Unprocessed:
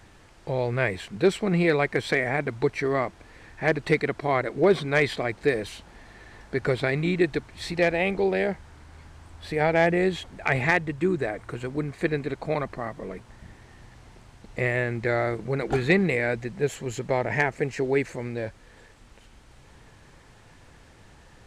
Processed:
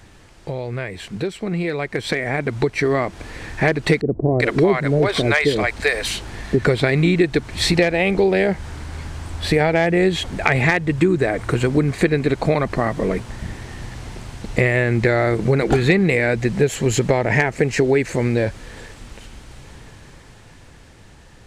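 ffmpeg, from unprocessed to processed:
ffmpeg -i in.wav -filter_complex "[0:a]asettb=1/sr,asplit=3[link_01][link_02][link_03];[link_01]atrim=end=4.014[link_04];[link_02]atrim=start=4.01:end=6.65,asetpts=PTS-STARTPTS,afade=type=in:duration=0.004:curve=qsin,afade=type=out:start_time=2.636:duration=0.004:curve=qsin,acrossover=split=570[link_05][link_06];[link_06]adelay=390[link_07];[link_05][link_07]amix=inputs=2:normalize=0,atrim=end_sample=116424[link_08];[link_03]atrim=start=6.646[link_09];[link_04][link_08]acrossfade=duration=0.004:curve1=hsin:curve2=qsin[link_10];[link_10][link_09]acrossfade=duration=0.004:curve1=qsin:curve2=hsin,acompressor=threshold=-29dB:ratio=6,equalizer=frequency=1000:width_type=o:width=2.2:gain=-3.5,dynaudnorm=framelen=280:gausssize=17:maxgain=10.5dB,volume=6.5dB" out.wav

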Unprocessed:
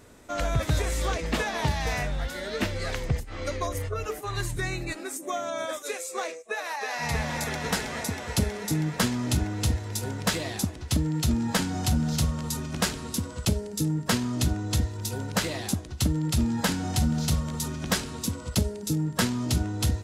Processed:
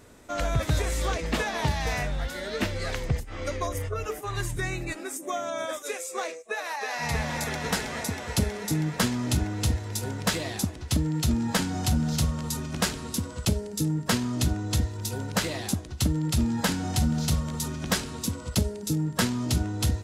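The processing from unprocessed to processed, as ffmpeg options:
ffmpeg -i in.wav -filter_complex "[0:a]asettb=1/sr,asplit=3[link_01][link_02][link_03];[link_01]atrim=end=3.244[link_04];[link_02]atrim=start=3.24:end=6.19,asetpts=PTS-STARTPTS,afade=type=in:duration=0.004:curve=qsin,afade=type=out:start_time=2.946:duration=0.004:curve=qsin,bandreject=frequency=4200:width=8.7[link_05];[link_03]atrim=start=6.186[link_06];[link_04][link_05]acrossfade=duration=0.004:curve1=hsin:curve2=qsin[link_07];[link_07][link_06]acrossfade=duration=0.004:curve1=qsin:curve2=hsin" out.wav

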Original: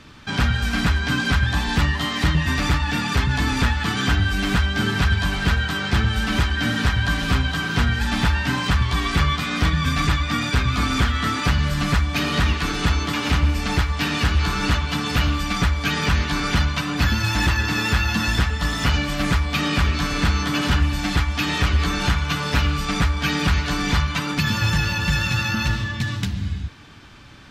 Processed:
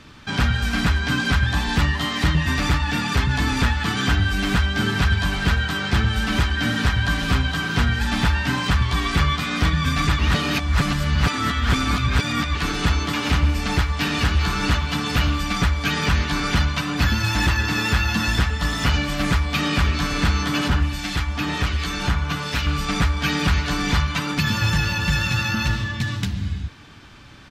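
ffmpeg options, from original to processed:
ffmpeg -i in.wav -filter_complex "[0:a]asplit=2[link_01][link_02];[link_02]afade=type=in:start_time=13.64:duration=0.01,afade=type=out:start_time=14.11:duration=0.01,aecho=0:1:400|800|1200|1600:0.16788|0.0755462|0.0339958|0.0152981[link_03];[link_01][link_03]amix=inputs=2:normalize=0,asettb=1/sr,asplit=3[link_04][link_05][link_06];[link_04]atrim=end=20.684[link_07];[link_05]atrim=start=20.68:end=22.67,asetpts=PTS-STARTPTS,afade=type=in:duration=0.004:curve=qsin,afade=type=out:start_time=1.986:duration=0.004:curve=qsin,acrossover=split=1700[link_08][link_09];[link_08]aeval=exprs='val(0)*(1-0.5/2+0.5/2*cos(2*PI*1.3*n/s))':channel_layout=same[link_10];[link_09]aeval=exprs='val(0)*(1-0.5/2-0.5/2*cos(2*PI*1.3*n/s))':channel_layout=same[link_11];[link_10][link_11]amix=inputs=2:normalize=0[link_12];[link_06]atrim=start=22.666[link_13];[link_07][link_12]acrossfade=duration=0.004:curve1=hsin:curve2=qsin[link_14];[link_14][link_13]acrossfade=duration=0.004:curve1=qsin:curve2=hsin,asplit=3[link_15][link_16][link_17];[link_15]atrim=end=10.192[link_18];[link_16]atrim=start=10.188:end=12.552,asetpts=PTS-STARTPTS,areverse[link_19];[link_17]atrim=start=12.548[link_20];[link_18][link_19]acrossfade=duration=0.004:curve1=hsin:curve2=hsin[link_21];[link_21][link_20]acrossfade=duration=0.004:curve1=hsin:curve2=hsin" out.wav

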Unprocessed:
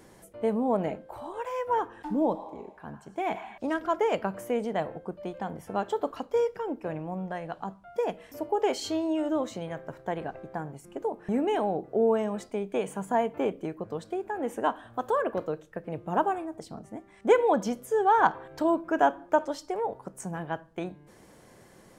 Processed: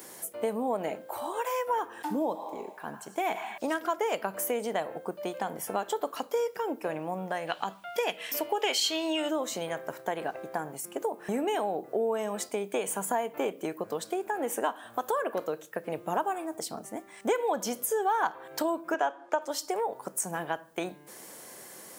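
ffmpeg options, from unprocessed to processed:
ffmpeg -i in.wav -filter_complex "[0:a]asettb=1/sr,asplit=3[link_01][link_02][link_03];[link_01]atrim=end=7.474[link_04];[link_02]atrim=start=7.47:end=9.31,asetpts=PTS-STARTPTS,afade=type=in:duration=0.004:curve=qsin,afade=type=out:start_time=1.836:duration=0.004:curve=qsin,equalizer=frequency=2900:width=0.83:gain=13[link_05];[link_03]atrim=start=9.306[link_06];[link_04][link_05]acrossfade=duration=0.004:curve1=hsin:curve2=qsin[link_07];[link_07][link_06]acrossfade=duration=0.004:curve1=qsin:curve2=hsin,asettb=1/sr,asplit=3[link_08][link_09][link_10];[link_08]atrim=end=18.944[link_11];[link_09]atrim=start=18.94:end=19.42,asetpts=PTS-STARTPTS,afade=type=in:duration=0.004:curve=qsin,afade=type=out:start_time=0.476:duration=0.004:curve=qsin,highpass=340,lowpass=5800[link_12];[link_10]atrim=start=19.416[link_13];[link_11][link_12]acrossfade=duration=0.004:curve1=hsin:curve2=qsin[link_14];[link_14][link_13]acrossfade=duration=0.004:curve1=qsin:curve2=hsin,highpass=frequency=180:poles=1,aemphasis=mode=production:type=bsi,acompressor=threshold=-34dB:ratio=3,volume=6dB" out.wav

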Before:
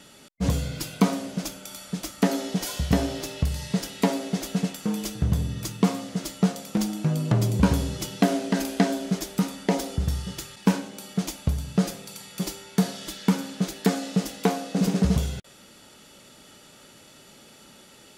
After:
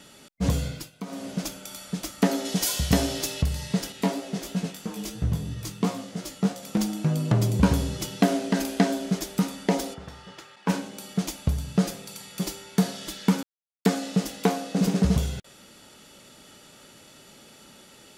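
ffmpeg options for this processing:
ffmpeg -i in.wav -filter_complex "[0:a]asettb=1/sr,asplit=3[link_01][link_02][link_03];[link_01]atrim=end=2.454[link_04];[link_02]atrim=start=2.45:end=3.42,asetpts=PTS-STARTPTS,afade=type=in:duration=0.004:curve=qsin,afade=type=out:start_time=0.966:duration=0.004:curve=qsin,highshelf=frequency=3000:gain=8.5[link_05];[link_03]atrim=start=3.416[link_06];[link_04][link_05]acrossfade=duration=0.004:curve1=hsin:curve2=qsin[link_07];[link_07][link_06]acrossfade=duration=0.004:curve1=qsin:curve2=hsin,asettb=1/sr,asplit=3[link_08][link_09][link_10];[link_08]atrim=end=3.924[link_11];[link_09]atrim=start=3.92:end=6.63,asetpts=PTS-STARTPTS,afade=type=in:duration=0.004:curve=qsin,afade=type=out:start_time=2.706:duration=0.004:curve=qsin,flanger=delay=16.5:depth=4.4:speed=3[link_12];[link_10]atrim=start=6.626[link_13];[link_11][link_12]acrossfade=duration=0.004:curve1=hsin:curve2=qsin[link_14];[link_14][link_13]acrossfade=duration=0.004:curve1=qsin:curve2=hsin,asplit=3[link_15][link_16][link_17];[link_15]afade=type=out:start_time=9.93:duration=0.02[link_18];[link_16]bandpass=frequency=1100:width_type=q:width=0.74,afade=type=in:start_time=9.93:duration=0.02,afade=type=out:start_time=10.68:duration=0.02[link_19];[link_17]afade=type=in:start_time=10.68:duration=0.02[link_20];[link_18][link_19][link_20]amix=inputs=3:normalize=0,asplit=5[link_21][link_22][link_23][link_24][link_25];[link_21]atrim=end=0.91,asetpts=PTS-STARTPTS,afade=type=out:start_time=0.67:duration=0.24:silence=0.149624[link_26];[link_22]atrim=start=0.91:end=1.06,asetpts=PTS-STARTPTS,volume=-16.5dB[link_27];[link_23]atrim=start=1.06:end=13.43,asetpts=PTS-STARTPTS,afade=type=in:duration=0.24:silence=0.149624,afade=type=out:start_time=12.366:duration=0.004:curve=hsin[link_28];[link_24]atrim=start=13.43:end=13.85,asetpts=PTS-STARTPTS,volume=0[link_29];[link_25]atrim=start=13.85,asetpts=PTS-STARTPTS,afade=type=in:duration=0.004:curve=hsin[link_30];[link_26][link_27][link_28][link_29][link_30]concat=n=5:v=0:a=1" out.wav

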